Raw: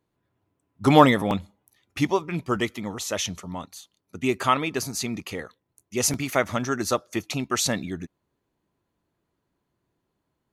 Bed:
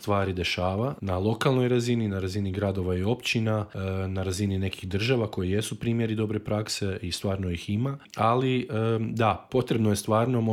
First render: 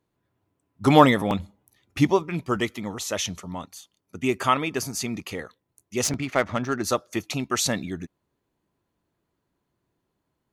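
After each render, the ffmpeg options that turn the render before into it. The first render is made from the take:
ffmpeg -i in.wav -filter_complex "[0:a]asettb=1/sr,asplit=3[link_01][link_02][link_03];[link_01]atrim=end=1.394[link_04];[link_02]atrim=start=1.39:end=2.23,asetpts=PTS-STARTPTS,afade=type=in:duration=0.004:curve=qsin,afade=type=out:start_time=0.836:duration=0.004:curve=qsin,lowshelf=frequency=440:gain=5.5[link_05];[link_03]atrim=start=2.226[link_06];[link_04][link_05]acrossfade=duration=0.004:curve1=hsin:curve2=qsin[link_07];[link_07][link_06]acrossfade=duration=0.004:curve1=qsin:curve2=hsin,asettb=1/sr,asplit=3[link_08][link_09][link_10];[link_08]atrim=end=3.674[link_11];[link_09]atrim=start=3.67:end=5.11,asetpts=PTS-STARTPTS,afade=type=in:duration=0.004:curve=qsin,afade=type=out:start_time=1.436:duration=0.004:curve=qsin,bandreject=frequency=4000:width=8.6[link_12];[link_10]atrim=start=5.106[link_13];[link_11][link_12]acrossfade=duration=0.004:curve1=hsin:curve2=qsin[link_14];[link_14][link_13]acrossfade=duration=0.004:curve1=qsin:curve2=hsin,asettb=1/sr,asplit=3[link_15][link_16][link_17];[link_15]atrim=end=6.044[link_18];[link_16]atrim=start=6.04:end=6.84,asetpts=PTS-STARTPTS,afade=type=in:duration=0.004:curve=qsin,afade=type=out:start_time=0.796:duration=0.004:curve=qsin,adynamicsmooth=sensitivity=3:basefreq=2800[link_19];[link_17]atrim=start=6.836[link_20];[link_18][link_19]acrossfade=duration=0.004:curve1=hsin:curve2=qsin[link_21];[link_21][link_20]acrossfade=duration=0.004:curve1=qsin:curve2=hsin" out.wav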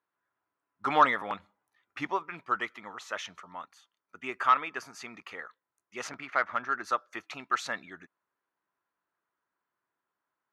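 ffmpeg -i in.wav -af "bandpass=frequency=1400:width_type=q:width=2.1:csg=0,aeval=exprs='0.398*(cos(1*acos(clip(val(0)/0.398,-1,1)))-cos(1*PI/2))+0.0178*(cos(5*acos(clip(val(0)/0.398,-1,1)))-cos(5*PI/2))':channel_layout=same" out.wav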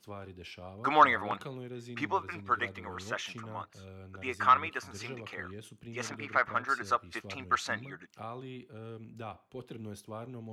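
ffmpeg -i in.wav -i bed.wav -filter_complex "[1:a]volume=-19.5dB[link_01];[0:a][link_01]amix=inputs=2:normalize=0" out.wav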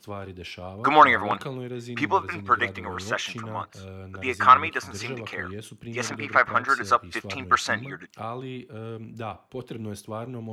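ffmpeg -i in.wav -af "volume=8.5dB,alimiter=limit=-3dB:level=0:latency=1" out.wav

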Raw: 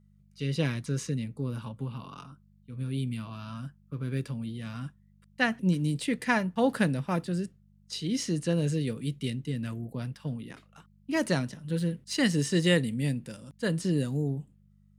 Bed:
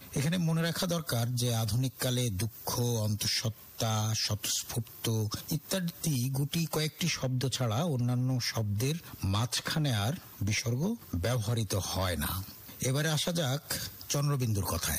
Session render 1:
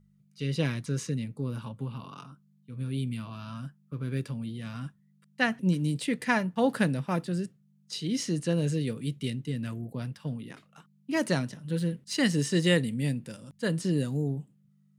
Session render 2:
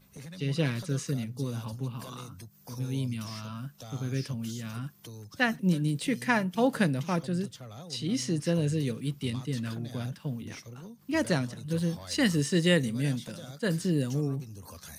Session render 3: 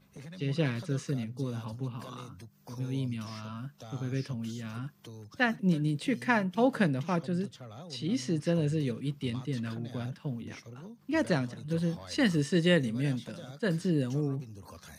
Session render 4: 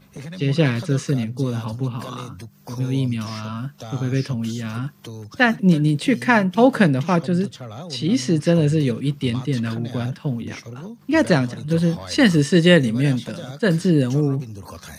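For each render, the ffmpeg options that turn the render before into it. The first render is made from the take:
ffmpeg -i in.wav -af "bandreject=frequency=50:width_type=h:width=4,bandreject=frequency=100:width_type=h:width=4" out.wav
ffmpeg -i in.wav -i bed.wav -filter_complex "[1:a]volume=-14.5dB[link_01];[0:a][link_01]amix=inputs=2:normalize=0" out.wav
ffmpeg -i in.wav -af "lowpass=frequency=3200:poles=1,lowshelf=frequency=78:gain=-7" out.wav
ffmpeg -i in.wav -af "volume=11.5dB,alimiter=limit=-1dB:level=0:latency=1" out.wav

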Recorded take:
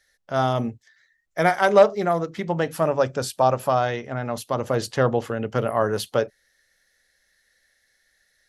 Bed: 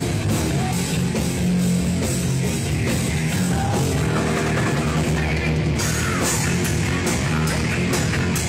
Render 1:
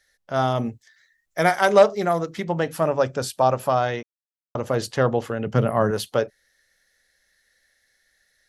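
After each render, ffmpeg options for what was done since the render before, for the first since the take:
ffmpeg -i in.wav -filter_complex "[0:a]asettb=1/sr,asplit=3[link_01][link_02][link_03];[link_01]atrim=end=0.664[link_04];[link_02]atrim=start=0.66:end=2.44,asetpts=PTS-STARTPTS,afade=type=in:duration=0.004:curve=qsin,afade=type=out:start_time=1.776:duration=0.004:curve=qsin,highshelf=frequency=4300:gain=6.5[link_05];[link_03]atrim=start=2.436[link_06];[link_04][link_05]acrossfade=duration=0.004:curve1=hsin:curve2=qsin[link_07];[link_07][link_06]acrossfade=duration=0.004:curve1=qsin:curve2=hsin,asettb=1/sr,asplit=3[link_08][link_09][link_10];[link_08]atrim=end=5.464[link_11];[link_09]atrim=start=5.46:end=5.91,asetpts=PTS-STARTPTS,afade=type=in:duration=0.004:curve=qsin,afade=type=out:start_time=0.446:duration=0.004:curve=qsin,equalizer=frequency=160:width=1.2:gain=10.5[link_12];[link_10]atrim=start=5.906[link_13];[link_11][link_12]acrossfade=duration=0.004:curve1=hsin:curve2=qsin[link_14];[link_14][link_13]acrossfade=duration=0.004:curve1=qsin:curve2=hsin,asplit=3[link_15][link_16][link_17];[link_15]atrim=end=4.03,asetpts=PTS-STARTPTS,afade=type=out:start_time=4.026:duration=0.004:curve=hsin[link_18];[link_16]atrim=start=4.03:end=4.55,asetpts=PTS-STARTPTS,volume=0[link_19];[link_17]atrim=start=4.55,asetpts=PTS-STARTPTS,afade=type=in:duration=0.004:curve=hsin[link_20];[link_18][link_19][link_20]concat=n=3:v=0:a=1" out.wav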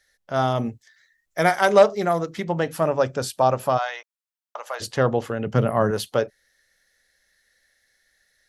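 ffmpeg -i in.wav -filter_complex "[0:a]asplit=3[link_01][link_02][link_03];[link_01]afade=type=out:start_time=3.77:duration=0.02[link_04];[link_02]highpass=frequency=730:width=0.5412,highpass=frequency=730:width=1.3066,afade=type=in:start_time=3.77:duration=0.02,afade=type=out:start_time=4.8:duration=0.02[link_05];[link_03]afade=type=in:start_time=4.8:duration=0.02[link_06];[link_04][link_05][link_06]amix=inputs=3:normalize=0" out.wav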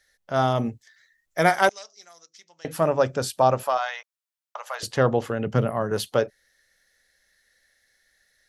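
ffmpeg -i in.wav -filter_complex "[0:a]asettb=1/sr,asplit=3[link_01][link_02][link_03];[link_01]atrim=end=1.694[link_04];[link_02]atrim=start=1.69:end=2.65,asetpts=PTS-STARTPTS,afade=type=in:duration=0.004:curve=qsin,afade=type=out:start_time=0.956:duration=0.004:curve=qsin,bandpass=frequency=5700:width_type=q:width=4.4[link_05];[link_03]atrim=start=2.646[link_06];[link_04][link_05]acrossfade=duration=0.004:curve1=hsin:curve2=qsin[link_07];[link_07][link_06]acrossfade=duration=0.004:curve1=qsin:curve2=hsin,asettb=1/sr,asplit=3[link_08][link_09][link_10];[link_08]atrim=end=3.634[link_11];[link_09]atrim=start=3.63:end=4.83,asetpts=PTS-STARTPTS,afade=type=in:duration=0.004:curve=qsin,afade=type=out:start_time=1.196:duration=0.004:curve=qsin,highpass=660[link_12];[link_10]atrim=start=4.826[link_13];[link_11][link_12]acrossfade=duration=0.004:curve1=hsin:curve2=qsin[link_14];[link_14][link_13]acrossfade=duration=0.004:curve1=qsin:curve2=hsin,asplit=2[link_15][link_16];[link_15]atrim=end=5.91,asetpts=PTS-STARTPTS,afade=type=out:start_time=5.45:duration=0.46:silence=0.354813[link_17];[link_16]atrim=start=5.91,asetpts=PTS-STARTPTS,afade=type=in:duration=0.004:curve=hsin:silence=0.354813[link_18];[link_17][link_18]concat=n=2:v=0:a=1" out.wav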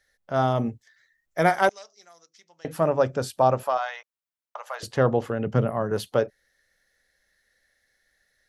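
ffmpeg -i in.wav -af "lowpass=frequency=1400:poles=1,aemphasis=mode=production:type=50kf" out.wav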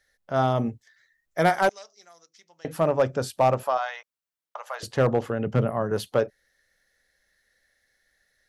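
ffmpeg -i in.wav -af "asoftclip=type=hard:threshold=-12.5dB" out.wav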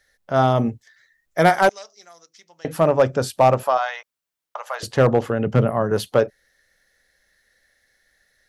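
ffmpeg -i in.wav -af "volume=5.5dB" out.wav

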